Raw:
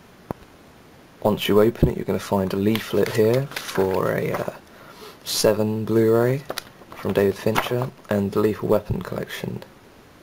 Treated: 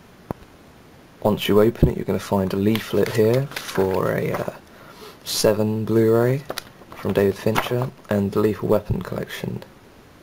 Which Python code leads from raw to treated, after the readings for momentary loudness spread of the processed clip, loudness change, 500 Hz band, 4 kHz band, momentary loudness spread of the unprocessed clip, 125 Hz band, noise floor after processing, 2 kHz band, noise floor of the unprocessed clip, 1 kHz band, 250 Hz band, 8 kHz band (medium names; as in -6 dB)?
15 LU, +0.5 dB, +0.5 dB, 0.0 dB, 15 LU, +2.0 dB, -48 dBFS, 0.0 dB, -49 dBFS, 0.0 dB, +1.0 dB, 0.0 dB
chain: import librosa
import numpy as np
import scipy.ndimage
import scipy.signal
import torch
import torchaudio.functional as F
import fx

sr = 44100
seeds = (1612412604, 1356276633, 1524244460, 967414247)

y = fx.low_shelf(x, sr, hz=190.0, db=3.0)